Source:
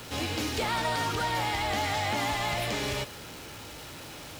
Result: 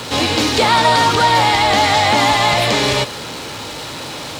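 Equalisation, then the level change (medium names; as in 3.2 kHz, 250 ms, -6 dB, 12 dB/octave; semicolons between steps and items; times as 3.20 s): graphic EQ 125/250/500/1000/2000/4000/8000 Hz +7/+7/+8/+10/+5/+11/+7 dB; +5.0 dB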